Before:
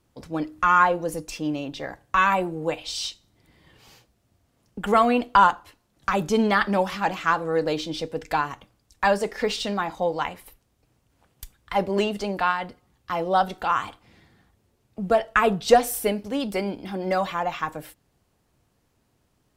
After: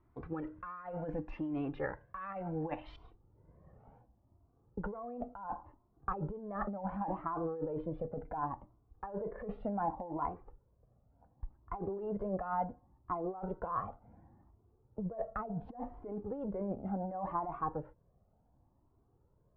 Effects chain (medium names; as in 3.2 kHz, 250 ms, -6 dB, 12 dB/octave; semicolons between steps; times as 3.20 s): low-pass 1.8 kHz 24 dB/octave, from 2.96 s 1 kHz; compressor with a negative ratio -30 dBFS, ratio -1; Shepard-style flanger rising 0.69 Hz; trim -3.5 dB